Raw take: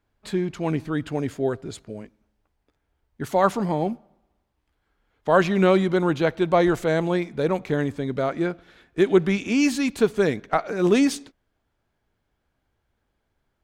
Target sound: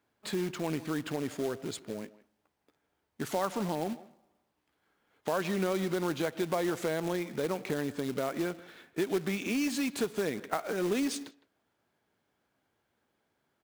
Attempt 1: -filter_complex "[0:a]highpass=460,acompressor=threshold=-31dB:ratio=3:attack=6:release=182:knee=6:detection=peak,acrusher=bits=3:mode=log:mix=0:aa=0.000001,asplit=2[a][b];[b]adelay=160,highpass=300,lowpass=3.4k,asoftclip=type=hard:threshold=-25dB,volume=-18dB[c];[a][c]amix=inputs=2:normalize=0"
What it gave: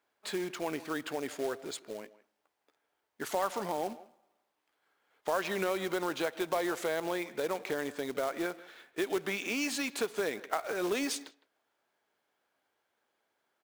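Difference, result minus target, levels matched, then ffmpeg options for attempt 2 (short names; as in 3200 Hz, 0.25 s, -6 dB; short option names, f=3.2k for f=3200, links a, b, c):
125 Hz band -9.5 dB
-filter_complex "[0:a]highpass=170,acompressor=threshold=-31dB:ratio=3:attack=6:release=182:knee=6:detection=peak,acrusher=bits=3:mode=log:mix=0:aa=0.000001,asplit=2[a][b];[b]adelay=160,highpass=300,lowpass=3.4k,asoftclip=type=hard:threshold=-25dB,volume=-18dB[c];[a][c]amix=inputs=2:normalize=0"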